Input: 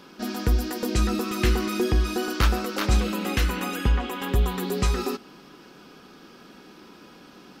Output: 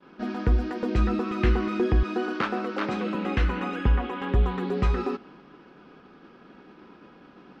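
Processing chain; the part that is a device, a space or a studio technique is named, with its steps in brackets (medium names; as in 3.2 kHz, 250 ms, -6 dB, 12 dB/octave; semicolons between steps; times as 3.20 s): hearing-loss simulation (low-pass 2.2 kHz 12 dB/octave; expander -46 dBFS); 2.03–3.15 s: high-pass 180 Hz 24 dB/octave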